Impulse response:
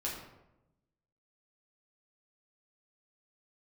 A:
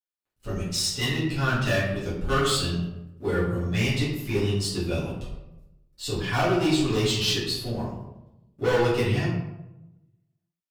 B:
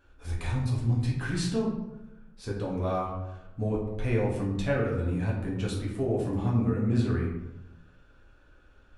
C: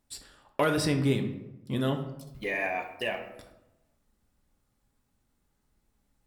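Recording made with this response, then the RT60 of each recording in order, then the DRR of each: B; 0.95, 0.95, 0.95 seconds; −11.0, −5.0, 5.0 decibels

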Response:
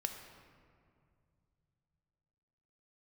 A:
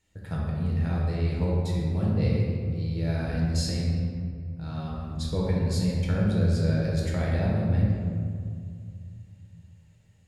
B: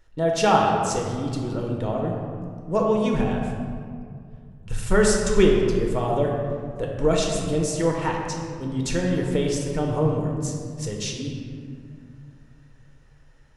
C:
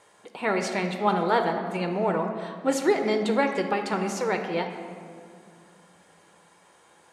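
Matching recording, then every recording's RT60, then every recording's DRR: C; 2.2, 2.3, 2.3 seconds; −5.0, −0.5, 5.0 decibels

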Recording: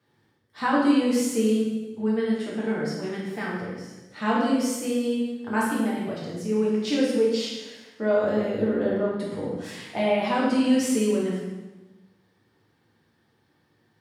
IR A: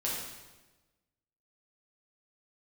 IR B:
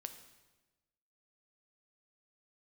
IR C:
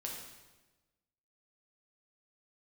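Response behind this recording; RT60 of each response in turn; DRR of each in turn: A; 1.2, 1.2, 1.2 seconds; −6.0, 7.5, −2.0 decibels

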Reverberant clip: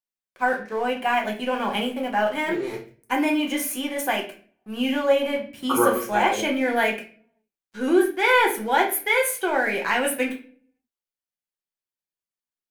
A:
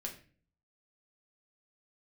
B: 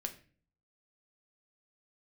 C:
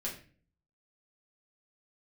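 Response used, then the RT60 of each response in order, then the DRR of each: A; 0.40, 0.40, 0.40 seconds; 0.0, 4.5, −5.0 decibels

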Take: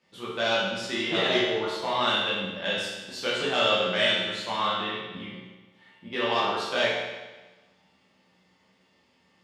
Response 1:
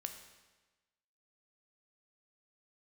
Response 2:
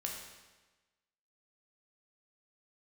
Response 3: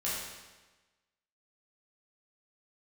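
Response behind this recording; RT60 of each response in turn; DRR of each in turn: 3; 1.2, 1.2, 1.2 seconds; 5.5, −1.0, −8.5 decibels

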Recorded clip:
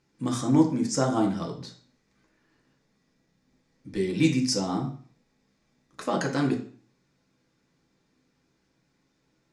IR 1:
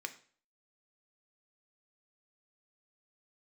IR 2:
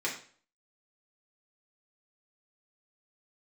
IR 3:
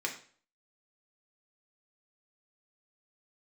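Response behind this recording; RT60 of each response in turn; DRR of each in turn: 3; 0.45, 0.45, 0.45 seconds; 6.5, −5.0, −0.5 decibels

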